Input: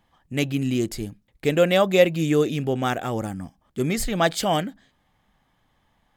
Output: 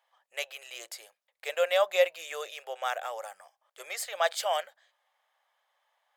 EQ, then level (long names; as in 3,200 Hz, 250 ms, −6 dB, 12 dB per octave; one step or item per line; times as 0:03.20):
elliptic high-pass filter 550 Hz, stop band 50 dB
−5.0 dB